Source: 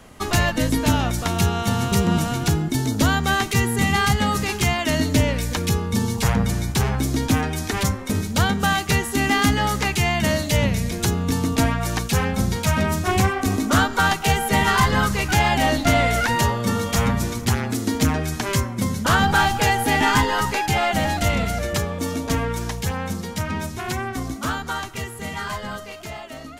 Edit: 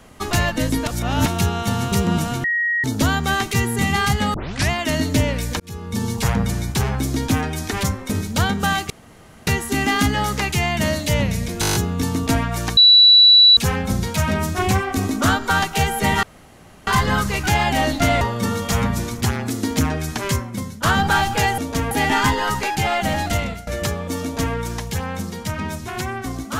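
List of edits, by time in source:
0.87–1.26 s: reverse
2.44–2.84 s: bleep 1.89 kHz -17 dBFS
4.34 s: tape start 0.36 s
5.60–6.09 s: fade in
8.90 s: insert room tone 0.57 s
11.04 s: stutter 0.02 s, 8 plays
12.06 s: add tone 3.94 kHz -6.5 dBFS 0.80 s
14.72 s: insert room tone 0.64 s
16.06–16.45 s: delete
18.60–19.07 s: fade out, to -13.5 dB
21.23–21.58 s: fade out, to -19 dB
22.13–22.46 s: copy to 19.82 s

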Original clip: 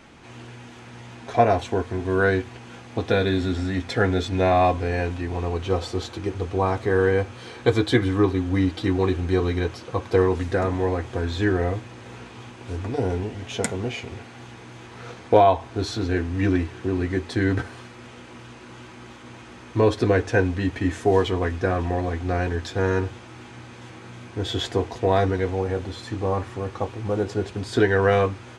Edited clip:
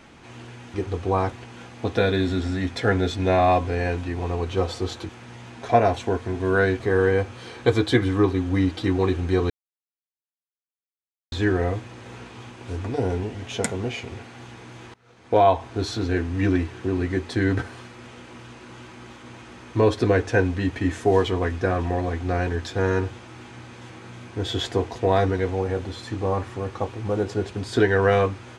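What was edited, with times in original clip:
0.74–2.45 s: swap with 6.22–6.80 s
9.50–11.32 s: mute
14.94–15.46 s: fade in quadratic, from -23 dB

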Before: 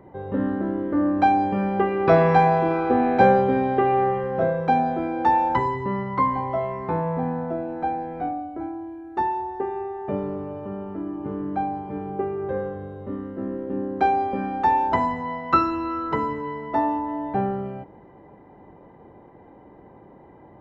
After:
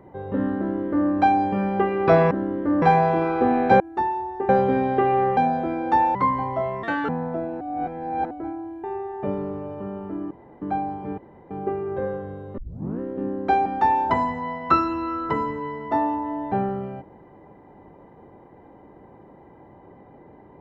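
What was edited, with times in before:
0.58–1.09 s: copy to 2.31 s
4.17–4.70 s: delete
5.48–6.12 s: delete
6.80–7.25 s: speed 175%
7.77–8.47 s: reverse
9.00–9.69 s: move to 3.29 s
11.16–11.47 s: room tone
12.03 s: insert room tone 0.33 s
13.10 s: tape start 0.42 s
14.18–14.48 s: delete

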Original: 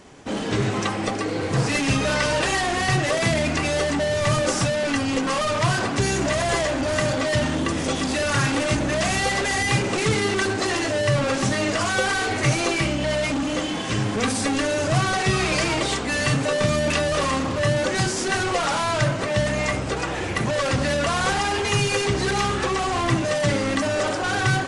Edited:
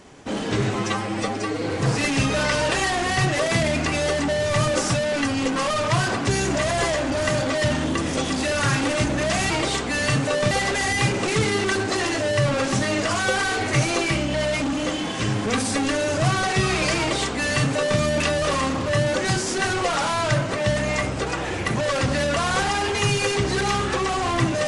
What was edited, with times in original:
0.75–1.33 s: stretch 1.5×
15.68–16.69 s: copy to 9.21 s

